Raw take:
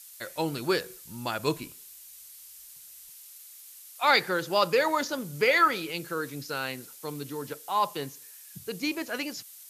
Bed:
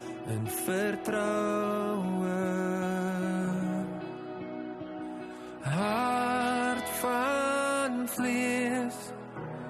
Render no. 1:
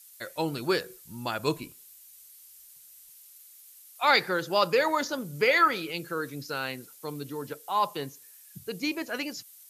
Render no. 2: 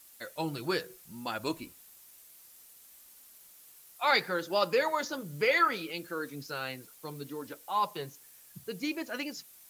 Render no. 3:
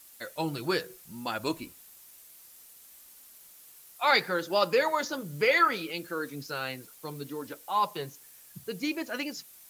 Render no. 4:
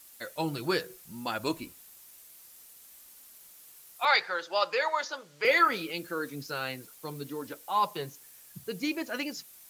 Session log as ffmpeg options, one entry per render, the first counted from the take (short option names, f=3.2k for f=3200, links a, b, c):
-af "afftdn=nr=6:nf=-49"
-af "acrusher=bits=8:mix=0:aa=0.000001,flanger=delay=3.3:depth=3.1:regen=-47:speed=0.66:shape=sinusoidal"
-af "volume=2.5dB"
-filter_complex "[0:a]asettb=1/sr,asplit=3[a][b][c];[a]atrim=end=4.054[d];[b]atrim=start=4.05:end=5.45,asetpts=PTS-STARTPTS,afade=t=in:d=0.004:c=qsin,afade=t=out:st=1.396:d=0.004:c=qsin,acrossover=split=520 6800:gain=0.0794 1 0.1[e][f][g];[e][f][g]amix=inputs=3:normalize=0[h];[c]atrim=start=5.446[i];[d][h]acrossfade=d=0.004:c1=hsin:c2=qsin[j];[j][i]acrossfade=d=0.004:c1=qsin:c2=hsin"